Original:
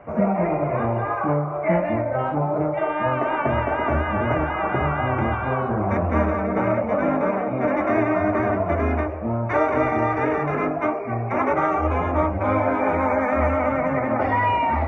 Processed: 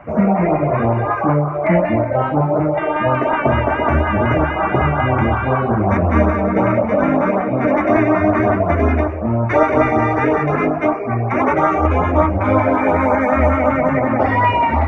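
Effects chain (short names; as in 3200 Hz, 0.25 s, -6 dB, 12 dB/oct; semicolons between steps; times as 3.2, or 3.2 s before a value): LFO notch saw up 5.4 Hz 360–3200 Hz; gain +7.5 dB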